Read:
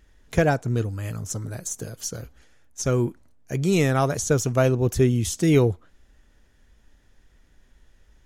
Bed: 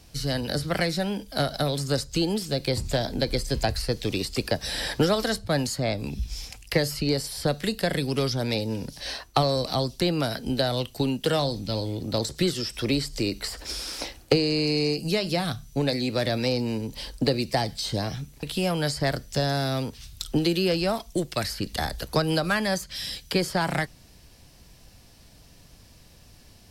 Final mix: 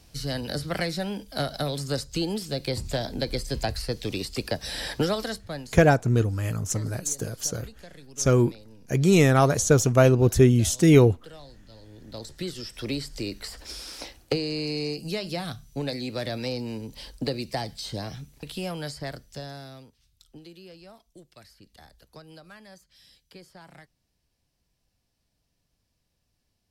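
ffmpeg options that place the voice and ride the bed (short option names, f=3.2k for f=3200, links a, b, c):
-filter_complex "[0:a]adelay=5400,volume=2.5dB[a];[1:a]volume=13.5dB,afade=t=out:st=5.08:d=0.7:silence=0.112202,afade=t=in:st=11.8:d=1.08:silence=0.149624,afade=t=out:st=18.4:d=1.55:silence=0.125893[b];[a][b]amix=inputs=2:normalize=0"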